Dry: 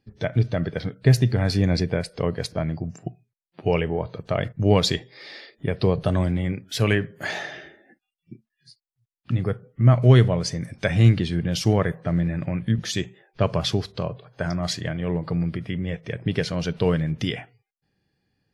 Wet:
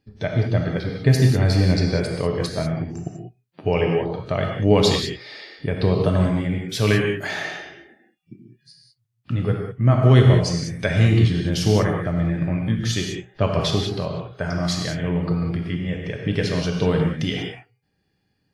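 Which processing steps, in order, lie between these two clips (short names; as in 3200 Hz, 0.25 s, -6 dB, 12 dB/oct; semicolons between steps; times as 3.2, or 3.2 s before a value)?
non-linear reverb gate 0.22 s flat, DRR 0.5 dB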